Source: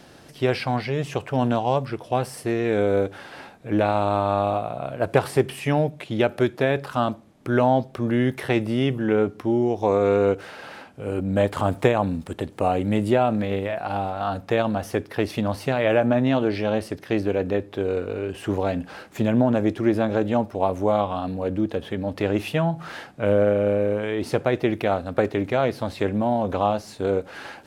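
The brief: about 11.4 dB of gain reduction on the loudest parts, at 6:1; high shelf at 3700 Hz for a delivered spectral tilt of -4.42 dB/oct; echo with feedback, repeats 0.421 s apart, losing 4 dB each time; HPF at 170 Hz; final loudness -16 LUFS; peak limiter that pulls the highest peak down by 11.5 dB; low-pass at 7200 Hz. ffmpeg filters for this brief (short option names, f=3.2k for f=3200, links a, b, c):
-af "highpass=170,lowpass=7.2k,highshelf=f=3.7k:g=6,acompressor=threshold=-26dB:ratio=6,alimiter=limit=-22dB:level=0:latency=1,aecho=1:1:421|842|1263|1684|2105|2526|2947|3368|3789:0.631|0.398|0.25|0.158|0.0994|0.0626|0.0394|0.0249|0.0157,volume=15dB"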